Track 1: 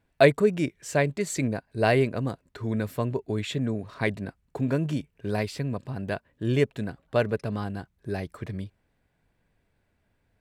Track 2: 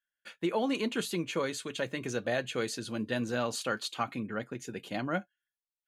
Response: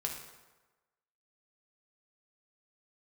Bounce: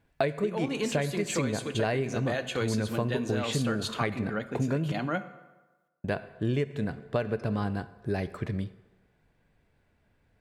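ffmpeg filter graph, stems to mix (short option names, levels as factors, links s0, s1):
-filter_complex "[0:a]highshelf=f=7700:g=-7.5,volume=1.06,asplit=3[s0][s1][s2];[s0]atrim=end=4.92,asetpts=PTS-STARTPTS,afade=t=out:st=4.916:d=0.004:c=hsin[s3];[s1]atrim=start=4.92:end=6.04,asetpts=PTS-STARTPTS,volume=0[s4];[s2]atrim=start=6.04,asetpts=PTS-STARTPTS,afade=t=in:d=0.004:c=hsin[s5];[s3][s4][s5]concat=n=3:v=0:a=1,asplit=2[s6][s7];[s7]volume=0.335[s8];[1:a]volume=1.06,asplit=2[s9][s10];[s10]volume=0.376[s11];[2:a]atrim=start_sample=2205[s12];[s8][s11]amix=inputs=2:normalize=0[s13];[s13][s12]afir=irnorm=-1:irlink=0[s14];[s6][s9][s14]amix=inputs=3:normalize=0,acompressor=threshold=0.0631:ratio=16"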